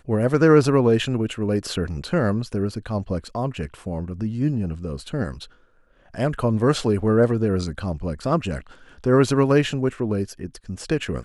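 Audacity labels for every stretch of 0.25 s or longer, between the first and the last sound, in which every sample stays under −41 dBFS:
5.470000	6.140000	silence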